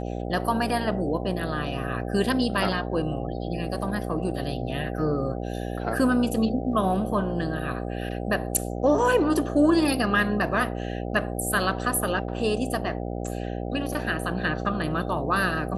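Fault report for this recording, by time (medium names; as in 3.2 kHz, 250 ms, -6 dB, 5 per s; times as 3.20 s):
buzz 60 Hz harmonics 13 -31 dBFS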